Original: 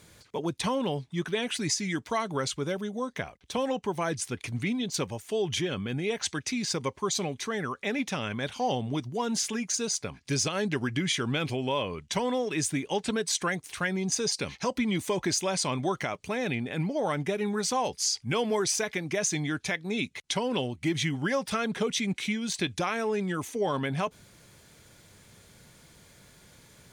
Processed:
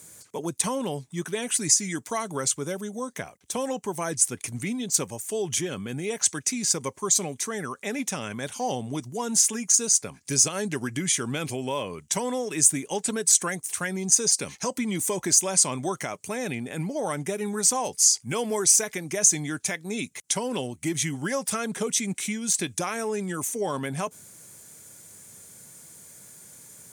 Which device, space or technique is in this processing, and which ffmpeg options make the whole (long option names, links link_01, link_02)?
budget condenser microphone: -af "highpass=110,highshelf=frequency=5600:width_type=q:width=1.5:gain=12.5"